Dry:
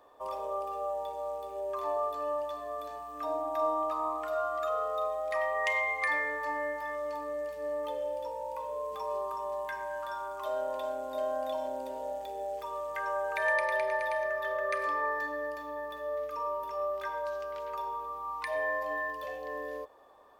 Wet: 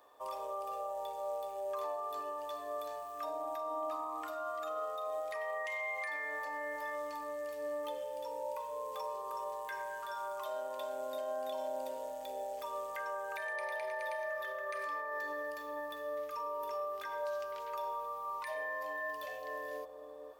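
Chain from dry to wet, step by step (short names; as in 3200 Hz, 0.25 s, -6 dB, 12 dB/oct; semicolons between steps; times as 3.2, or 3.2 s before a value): tilt +2 dB/oct; limiter -29 dBFS, peak gain reduction 13.5 dB; analogue delay 0.471 s, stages 2048, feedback 35%, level -5 dB; gain -3 dB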